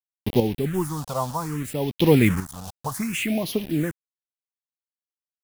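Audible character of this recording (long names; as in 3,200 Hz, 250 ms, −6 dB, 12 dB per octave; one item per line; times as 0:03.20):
a quantiser's noise floor 6 bits, dither none
chopped level 0.5 Hz, depth 60%, duty 20%
phaser sweep stages 4, 0.64 Hz, lowest notch 320–1,400 Hz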